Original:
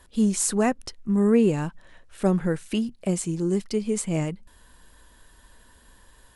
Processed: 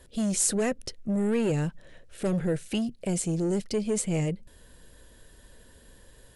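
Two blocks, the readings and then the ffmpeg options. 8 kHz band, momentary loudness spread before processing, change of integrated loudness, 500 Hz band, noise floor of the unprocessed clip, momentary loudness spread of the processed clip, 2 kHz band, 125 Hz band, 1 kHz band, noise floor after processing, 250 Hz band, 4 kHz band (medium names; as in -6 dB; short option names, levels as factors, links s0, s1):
0.0 dB, 10 LU, -3.5 dB, -4.0 dB, -55 dBFS, 8 LU, -2.5 dB, -2.0 dB, -7.0 dB, -55 dBFS, -5.0 dB, -0.5 dB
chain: -filter_complex "[0:a]acrossover=split=1400[s0][s1];[s0]asoftclip=type=tanh:threshold=0.0447[s2];[s2][s1]amix=inputs=2:normalize=0,equalizer=f=125:t=o:w=1:g=6,equalizer=f=500:t=o:w=1:g=8,equalizer=f=1000:t=o:w=1:g=-9"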